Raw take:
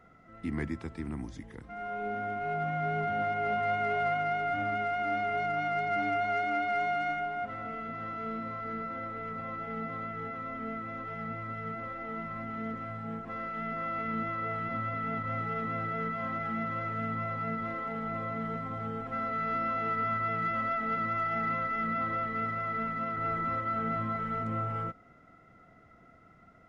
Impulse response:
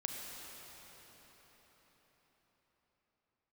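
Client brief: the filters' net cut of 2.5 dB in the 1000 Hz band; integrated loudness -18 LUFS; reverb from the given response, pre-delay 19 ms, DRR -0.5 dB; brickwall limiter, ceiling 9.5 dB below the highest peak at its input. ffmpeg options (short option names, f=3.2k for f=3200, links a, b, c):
-filter_complex "[0:a]equalizer=f=1k:t=o:g=-4.5,alimiter=level_in=7dB:limit=-24dB:level=0:latency=1,volume=-7dB,asplit=2[a][b];[1:a]atrim=start_sample=2205,adelay=19[c];[b][c]afir=irnorm=-1:irlink=0,volume=-0.5dB[d];[a][d]amix=inputs=2:normalize=0,volume=18dB"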